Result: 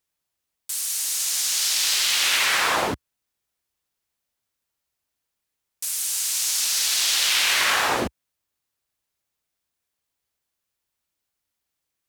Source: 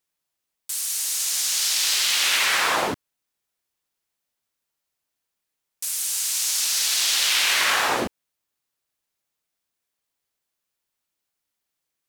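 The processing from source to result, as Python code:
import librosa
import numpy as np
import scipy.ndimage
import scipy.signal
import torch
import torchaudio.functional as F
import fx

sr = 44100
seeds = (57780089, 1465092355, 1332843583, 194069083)

y = fx.peak_eq(x, sr, hz=64.0, db=8.0, octaves=1.5)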